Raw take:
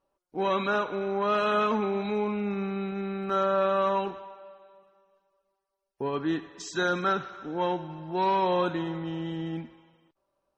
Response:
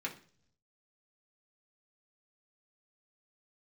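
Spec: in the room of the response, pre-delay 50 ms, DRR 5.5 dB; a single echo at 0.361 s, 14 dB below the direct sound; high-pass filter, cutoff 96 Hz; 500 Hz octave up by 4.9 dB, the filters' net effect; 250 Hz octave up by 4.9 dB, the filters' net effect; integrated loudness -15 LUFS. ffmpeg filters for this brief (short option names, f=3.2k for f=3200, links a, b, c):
-filter_complex "[0:a]highpass=96,equalizer=f=250:t=o:g=6,equalizer=f=500:t=o:g=4.5,aecho=1:1:361:0.2,asplit=2[a][b];[1:a]atrim=start_sample=2205,adelay=50[c];[b][c]afir=irnorm=-1:irlink=0,volume=-7.5dB[d];[a][d]amix=inputs=2:normalize=0,volume=9.5dB"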